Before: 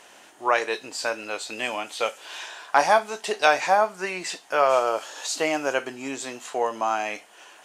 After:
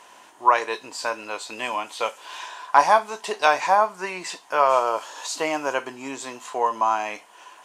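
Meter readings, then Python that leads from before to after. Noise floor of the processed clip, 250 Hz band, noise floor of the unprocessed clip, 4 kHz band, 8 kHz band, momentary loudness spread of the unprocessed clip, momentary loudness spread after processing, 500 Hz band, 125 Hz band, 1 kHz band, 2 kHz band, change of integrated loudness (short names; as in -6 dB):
-50 dBFS, -1.5 dB, -51 dBFS, -1.5 dB, -1.5 dB, 12 LU, 14 LU, -1.0 dB, n/a, +3.5 dB, -1.0 dB, +1.5 dB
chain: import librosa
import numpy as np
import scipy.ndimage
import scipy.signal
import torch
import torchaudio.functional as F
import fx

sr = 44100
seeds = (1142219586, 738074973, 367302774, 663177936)

y = fx.peak_eq(x, sr, hz=1000.0, db=12.5, octaves=0.28)
y = y * librosa.db_to_amplitude(-1.5)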